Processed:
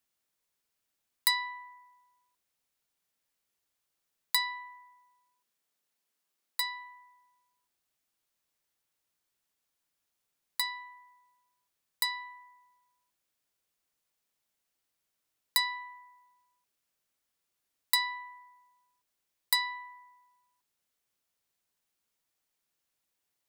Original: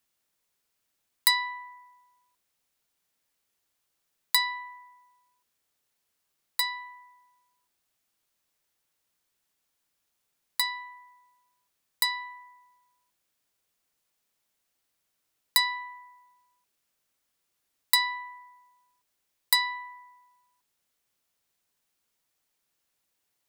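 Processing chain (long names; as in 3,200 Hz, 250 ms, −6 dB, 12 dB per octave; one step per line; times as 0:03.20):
0:04.67–0:06.83: high-pass filter 74 Hz → 220 Hz 24 dB per octave
level −4.5 dB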